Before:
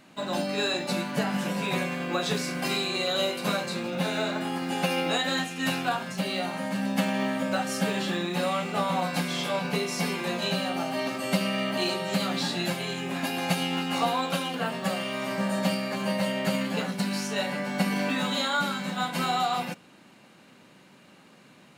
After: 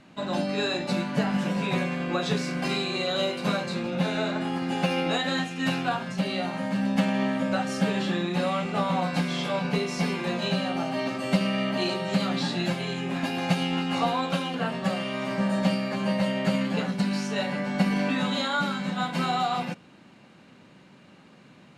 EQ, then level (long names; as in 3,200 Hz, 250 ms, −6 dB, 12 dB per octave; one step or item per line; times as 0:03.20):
high-frequency loss of the air 58 metres
low-shelf EQ 170 Hz +8 dB
0.0 dB